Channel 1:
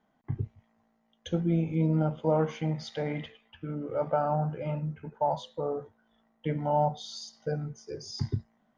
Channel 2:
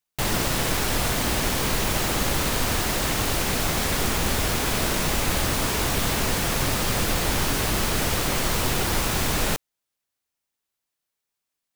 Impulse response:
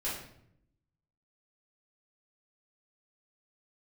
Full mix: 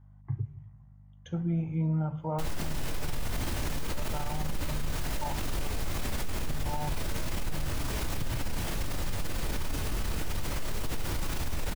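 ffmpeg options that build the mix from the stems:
-filter_complex "[0:a]aeval=exprs='val(0)+0.00251*(sin(2*PI*50*n/s)+sin(2*PI*2*50*n/s)/2+sin(2*PI*3*50*n/s)/3+sin(2*PI*4*50*n/s)/4+sin(2*PI*5*50*n/s)/5)':c=same,equalizer=f=125:t=o:w=1:g=10,equalizer=f=250:t=o:w=1:g=-6,equalizer=f=500:t=o:w=1:g=-6,equalizer=f=1k:t=o:w=1:g=6,equalizer=f=4k:t=o:w=1:g=-9,volume=-4.5dB,asplit=3[a][b][c];[b]volume=-19dB[d];[1:a]lowshelf=f=120:g=10.5,adelay=2200,volume=-9.5dB,asplit=2[e][f];[f]volume=-3.5dB[g];[c]apad=whole_len=615213[h];[e][h]sidechaincompress=threshold=-32dB:ratio=8:attack=16:release=343[i];[2:a]atrim=start_sample=2205[j];[d][g]amix=inputs=2:normalize=0[k];[k][j]afir=irnorm=-1:irlink=0[l];[a][i][l]amix=inputs=3:normalize=0,alimiter=limit=-23dB:level=0:latency=1:release=48"

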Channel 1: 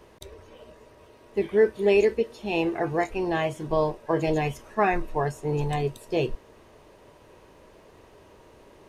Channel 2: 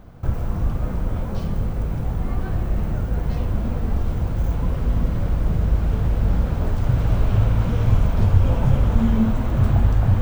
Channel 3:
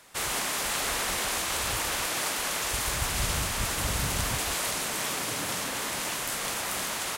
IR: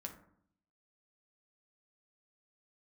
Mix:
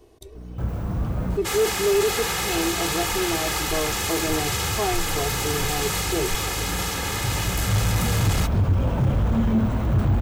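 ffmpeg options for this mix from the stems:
-filter_complex "[0:a]equalizer=f=1.6k:w=0.65:g=-11,aecho=1:1:2.7:0.65,volume=-1dB,asplit=3[a][b][c];[b]volume=-15dB[d];[1:a]highpass=57,aeval=exprs='val(0)+0.0224*(sin(2*PI*60*n/s)+sin(2*PI*2*60*n/s)/2+sin(2*PI*3*60*n/s)/3+sin(2*PI*4*60*n/s)/4+sin(2*PI*5*60*n/s)/5)':c=same,adelay=350,volume=0dB,asplit=2[e][f];[f]volume=-10.5dB[g];[2:a]highpass=f=85:w=0.5412,highpass=f=85:w=1.3066,equalizer=f=9.6k:w=6.1:g=-9.5,aecho=1:1:2.4:0.85,adelay=1300,volume=2.5dB[h];[c]apad=whole_len=466006[i];[e][i]sidechaincompress=threshold=-48dB:ratio=8:attack=49:release=1060[j];[3:a]atrim=start_sample=2205[k];[d][g]amix=inputs=2:normalize=0[l];[l][k]afir=irnorm=-1:irlink=0[m];[a][j][h][m]amix=inputs=4:normalize=0,asoftclip=type=tanh:threshold=-13.5dB"

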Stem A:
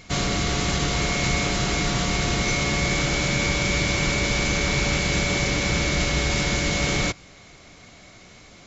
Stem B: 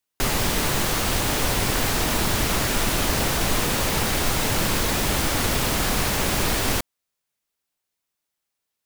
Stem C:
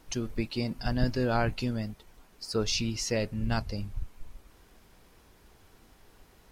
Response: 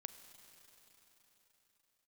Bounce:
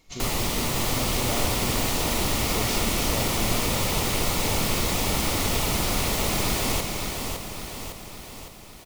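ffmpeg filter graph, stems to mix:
-filter_complex "[0:a]tiltshelf=f=1.4k:g=-5,aeval=exprs='0.335*(cos(1*acos(clip(val(0)/0.335,-1,1)))-cos(1*PI/2))+0.0596*(cos(3*acos(clip(val(0)/0.335,-1,1)))-cos(3*PI/2))':c=same,volume=-12dB[a];[1:a]volume=-3.5dB,asplit=2[b][c];[c]volume=-5.5dB[d];[2:a]volume=-6dB[e];[d]aecho=0:1:558|1116|1674|2232|2790|3348|3906|4464:1|0.56|0.314|0.176|0.0983|0.0551|0.0308|0.0173[f];[a][b][e][f]amix=inputs=4:normalize=0,equalizer=f=1.6k:t=o:w=0.22:g=-12.5"

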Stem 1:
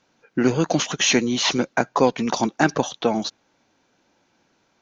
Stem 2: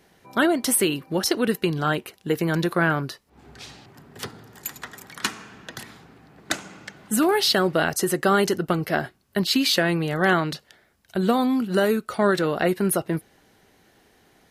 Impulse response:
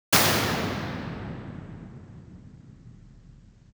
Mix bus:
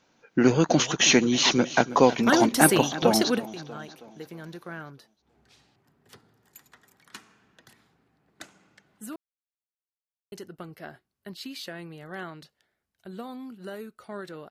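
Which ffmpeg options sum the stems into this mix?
-filter_complex "[0:a]volume=-0.5dB,asplit=3[a][b][c];[b]volume=-15.5dB[d];[1:a]adelay=1900,volume=-2dB,asplit=3[e][f][g];[e]atrim=end=9.16,asetpts=PTS-STARTPTS,afade=t=out:st=9.156:d=0.004:c=hsin[h];[f]atrim=start=9.16:end=10.32,asetpts=PTS-STARTPTS,volume=0[i];[g]atrim=start=10.32,asetpts=PTS-STARTPTS,afade=t=in:d=0.004:c=hsin[j];[h][i][j]concat=n=3:v=0:a=1[k];[c]apad=whole_len=723369[l];[k][l]sidechaingate=range=-16dB:threshold=-40dB:ratio=16:detection=peak[m];[d]aecho=0:1:321|642|963|1284|1605|1926|2247:1|0.5|0.25|0.125|0.0625|0.0312|0.0156[n];[a][m][n]amix=inputs=3:normalize=0"

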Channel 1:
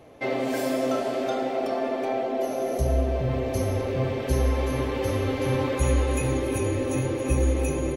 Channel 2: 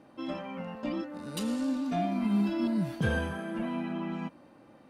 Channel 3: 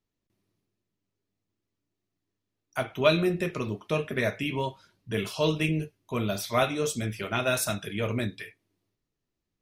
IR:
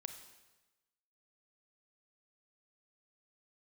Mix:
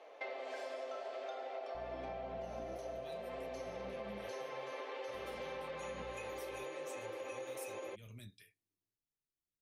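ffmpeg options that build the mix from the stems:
-filter_complex "[0:a]highpass=f=490:w=0.5412,highpass=f=490:w=1.3066,lowpass=4.9k,volume=-3dB[a];[1:a]acrossover=split=140[b][c];[c]acompressor=threshold=-42dB:ratio=6[d];[b][d]amix=inputs=2:normalize=0,aeval=exprs='val(0)+0.00794*(sin(2*PI*60*n/s)+sin(2*PI*2*60*n/s)/2+sin(2*PI*3*60*n/s)/3+sin(2*PI*4*60*n/s)/4+sin(2*PI*5*60*n/s)/5)':c=same,adelay=1750,volume=0.5dB,asplit=3[e][f][g];[e]atrim=end=4.28,asetpts=PTS-STARTPTS,afade=t=out:st=4.276:d=0.004:c=hsin[h];[f]atrim=start=4.28:end=5.14,asetpts=PTS-STARTPTS,volume=0[i];[g]atrim=start=5.14,asetpts=PTS-STARTPTS,afade=t=in:d=0.004:c=hsin[j];[h][i][j]concat=n=3:v=0:a=1[k];[2:a]highshelf=f=6.2k:g=11.5,acrossover=split=180|3000[l][m][n];[m]acompressor=threshold=-52dB:ratio=2[o];[l][o][n]amix=inputs=3:normalize=0,volume=-19dB,asplit=2[p][q];[q]apad=whole_len=292861[r];[k][r]sidechaincompress=threshold=-59dB:ratio=8:attack=16:release=261[s];[a][s][p]amix=inputs=3:normalize=0,acompressor=threshold=-42dB:ratio=6"

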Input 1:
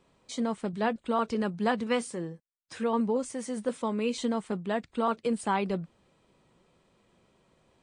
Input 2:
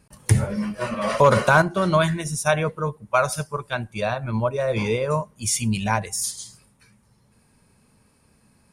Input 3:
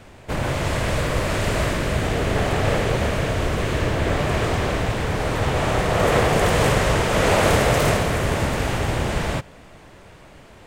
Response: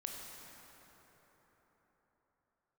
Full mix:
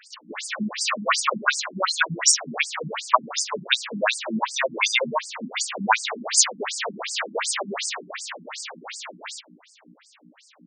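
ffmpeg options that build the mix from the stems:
-filter_complex "[0:a]aeval=exprs='0.168*sin(PI/2*3.55*val(0)/0.168)':c=same,adelay=2100,volume=-9dB,asplit=2[a][b];[b]volume=-7dB[c];[1:a]firequalizer=gain_entry='entry(220,0);entry(310,-4);entry(990,11)':delay=0.05:min_phase=1,acompressor=threshold=-17dB:ratio=3,volume=2.5dB,asplit=2[d][e];[2:a]acrusher=bits=8:mix=0:aa=0.000001,highpass=630,aeval=exprs='val(0)+0.0158*(sin(2*PI*60*n/s)+sin(2*PI*2*60*n/s)/2+sin(2*PI*3*60*n/s)/3+sin(2*PI*4*60*n/s)/4+sin(2*PI*5*60*n/s)/5)':c=same,volume=-4dB[f];[e]apad=whole_len=437506[g];[a][g]sidechaincompress=threshold=-30dB:ratio=8:attack=16:release=127[h];[3:a]atrim=start_sample=2205[i];[c][i]afir=irnorm=-1:irlink=0[j];[h][d][f][j]amix=inputs=4:normalize=0,highshelf=f=2.4k:g=11,afftfilt=real='re*between(b*sr/1024,220*pow(6600/220,0.5+0.5*sin(2*PI*2.7*pts/sr))/1.41,220*pow(6600/220,0.5+0.5*sin(2*PI*2.7*pts/sr))*1.41)':imag='im*between(b*sr/1024,220*pow(6600/220,0.5+0.5*sin(2*PI*2.7*pts/sr))/1.41,220*pow(6600/220,0.5+0.5*sin(2*PI*2.7*pts/sr))*1.41)':win_size=1024:overlap=0.75"

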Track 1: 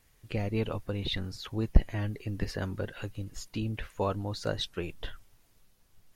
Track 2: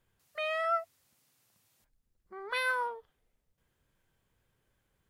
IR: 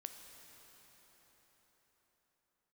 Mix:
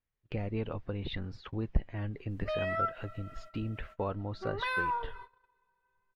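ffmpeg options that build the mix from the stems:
-filter_complex "[0:a]lowpass=3k,volume=1dB[a];[1:a]highshelf=f=3k:g=-8,aecho=1:1:5.1:0.81,adelay=2100,volume=2dB,asplit=2[b][c];[c]volume=-5.5dB[d];[2:a]atrim=start_sample=2205[e];[d][e]afir=irnorm=-1:irlink=0[f];[a][b][f]amix=inputs=3:normalize=0,agate=range=-24dB:threshold=-44dB:ratio=16:detection=peak,highshelf=f=6.5k:g=-8,acompressor=threshold=-39dB:ratio=1.5"

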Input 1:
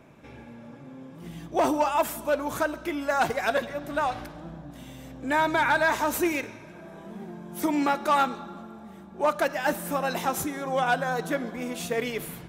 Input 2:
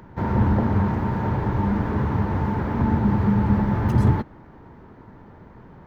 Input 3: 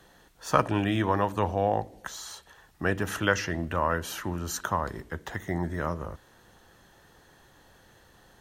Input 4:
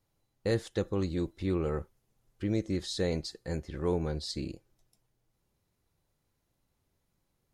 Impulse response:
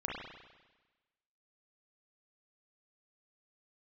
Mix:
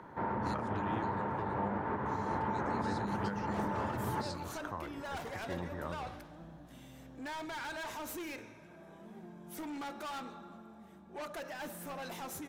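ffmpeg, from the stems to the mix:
-filter_complex "[0:a]bandreject=f=48.02:t=h:w=4,bandreject=f=96.04:t=h:w=4,bandreject=f=144.06:t=h:w=4,bandreject=f=192.08:t=h:w=4,bandreject=f=240.1:t=h:w=4,bandreject=f=288.12:t=h:w=4,bandreject=f=336.14:t=h:w=4,bandreject=f=384.16:t=h:w=4,bandreject=f=432.18:t=h:w=4,bandreject=f=480.2:t=h:w=4,bandreject=f=528.22:t=h:w=4,bandreject=f=576.24:t=h:w=4,bandreject=f=624.26:t=h:w=4,asoftclip=type=tanh:threshold=-29.5dB,adelay=1950,volume=-9.5dB[a];[1:a]highshelf=f=2.1k:g=-10.5,alimiter=limit=-14dB:level=0:latency=1:release=79,bandpass=f=1.4k:t=q:w=0.57:csg=0,volume=0dB,asplit=2[b][c];[c]volume=-10dB[d];[2:a]lowpass=f=2.7k:p=1,volume=-11dB,asplit=2[e][f];[3:a]tiltshelf=f=970:g=-10,volume=-13.5dB[g];[f]apad=whole_len=332278[h];[g][h]sidechaincompress=threshold=-41dB:ratio=8:attack=42:release=208[i];[4:a]atrim=start_sample=2205[j];[d][j]afir=irnorm=-1:irlink=0[k];[a][b][e][i][k]amix=inputs=5:normalize=0,alimiter=level_in=1.5dB:limit=-24dB:level=0:latency=1:release=414,volume=-1.5dB"

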